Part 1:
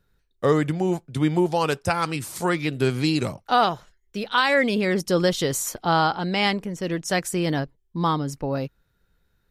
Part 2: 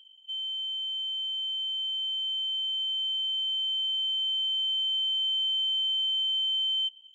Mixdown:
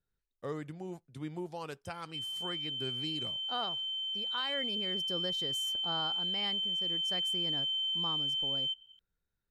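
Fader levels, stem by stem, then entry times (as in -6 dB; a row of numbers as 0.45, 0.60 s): -19.0, -5.5 dB; 0.00, 1.85 s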